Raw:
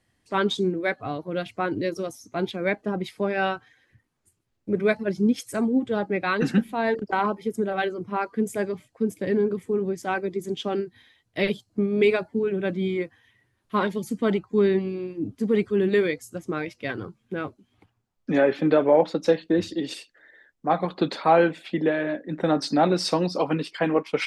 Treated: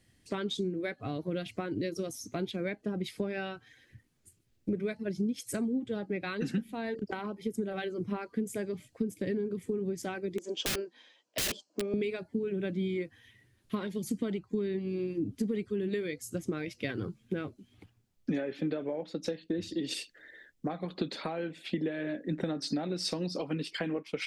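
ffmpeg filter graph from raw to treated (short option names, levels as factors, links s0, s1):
-filter_complex "[0:a]asettb=1/sr,asplit=3[s0][s1][s2];[s0]atrim=end=10.384[s3];[s1]atrim=start=10.38:end=11.94,asetpts=PTS-STARTPTS,afade=t=in:d=0.004:c=qsin,afade=t=out:st=1.556:d=0.004:c=qsin,highpass=f=330:w=0.5412,highpass=f=330:w=1.3066,equalizer=f=390:t=q:w=4:g=-6,equalizer=f=580:t=q:w=4:g=9,equalizer=f=960:t=q:w=4:g=9,equalizer=f=2000:t=q:w=4:g=-9,equalizer=f=3800:t=q:w=4:g=-8,lowpass=f=6900:w=0.5412,lowpass=f=6900:w=1.3066,aeval=exprs='(mod(16.8*val(0)+1,2)-1)/16.8':c=same[s4];[s2]atrim=start=11.936[s5];[s3][s4]acrossfade=d=0.004:c1=hsin:c2=qsin[s6];[s6][s5]acrossfade=d=0.004:c1=qsin:c2=hsin,acompressor=threshold=0.0251:ratio=12,equalizer=f=960:w=0.85:g=-10.5,volume=1.78"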